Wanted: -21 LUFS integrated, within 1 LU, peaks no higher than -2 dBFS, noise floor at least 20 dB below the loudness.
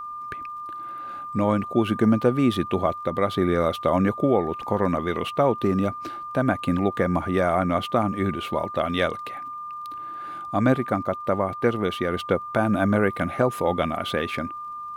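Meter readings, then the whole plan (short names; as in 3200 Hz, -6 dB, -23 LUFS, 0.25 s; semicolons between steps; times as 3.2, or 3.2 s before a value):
ticks 24/s; steady tone 1200 Hz; tone level -32 dBFS; loudness -24.5 LUFS; peak -7.0 dBFS; loudness target -21.0 LUFS
-> de-click; notch 1200 Hz, Q 30; gain +3.5 dB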